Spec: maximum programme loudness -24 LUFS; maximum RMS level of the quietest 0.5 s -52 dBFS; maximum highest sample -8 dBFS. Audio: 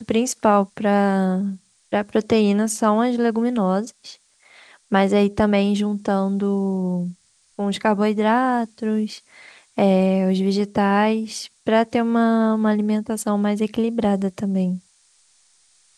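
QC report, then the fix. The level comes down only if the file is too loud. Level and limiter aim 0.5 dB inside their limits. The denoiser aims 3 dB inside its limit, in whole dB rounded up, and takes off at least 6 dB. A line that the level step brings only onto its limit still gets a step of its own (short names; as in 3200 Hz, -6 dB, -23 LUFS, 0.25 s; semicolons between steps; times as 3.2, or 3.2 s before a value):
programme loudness -20.5 LUFS: fail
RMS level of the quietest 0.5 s -59 dBFS: OK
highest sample -4.5 dBFS: fail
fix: gain -4 dB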